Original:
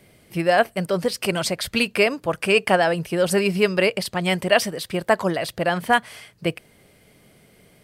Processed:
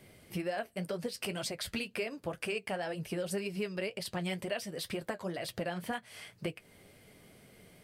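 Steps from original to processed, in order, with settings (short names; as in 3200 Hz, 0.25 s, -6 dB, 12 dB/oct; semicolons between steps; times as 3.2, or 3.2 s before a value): dynamic EQ 1100 Hz, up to -5 dB, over -33 dBFS, Q 1.3; compressor 6:1, threshold -30 dBFS, peak gain reduction 16 dB; flange 2 Hz, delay 7.5 ms, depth 4.8 ms, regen -46%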